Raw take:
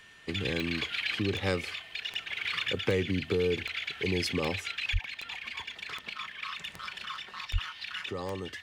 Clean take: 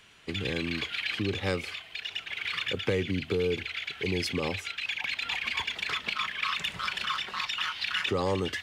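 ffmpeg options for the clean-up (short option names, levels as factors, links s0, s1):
-filter_complex "[0:a]adeclick=t=4,bandreject=f=1800:w=30,asplit=3[s0][s1][s2];[s0]afade=t=out:st=4.92:d=0.02[s3];[s1]highpass=f=140:w=0.5412,highpass=f=140:w=1.3066,afade=t=in:st=4.92:d=0.02,afade=t=out:st=5.04:d=0.02[s4];[s2]afade=t=in:st=5.04:d=0.02[s5];[s3][s4][s5]amix=inputs=3:normalize=0,asplit=3[s6][s7][s8];[s6]afade=t=out:st=7.52:d=0.02[s9];[s7]highpass=f=140:w=0.5412,highpass=f=140:w=1.3066,afade=t=in:st=7.52:d=0.02,afade=t=out:st=7.64:d=0.02[s10];[s8]afade=t=in:st=7.64:d=0.02[s11];[s9][s10][s11]amix=inputs=3:normalize=0,asetnsamples=n=441:p=0,asendcmd='4.94 volume volume 8dB',volume=1"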